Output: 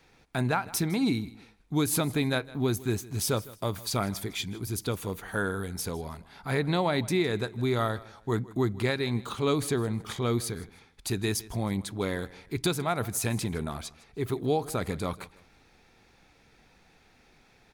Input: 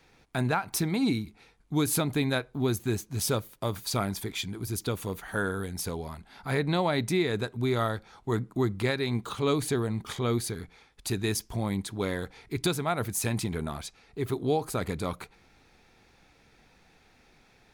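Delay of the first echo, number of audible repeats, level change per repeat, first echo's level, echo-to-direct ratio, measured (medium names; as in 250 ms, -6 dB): 158 ms, 2, -11.0 dB, -20.0 dB, -19.5 dB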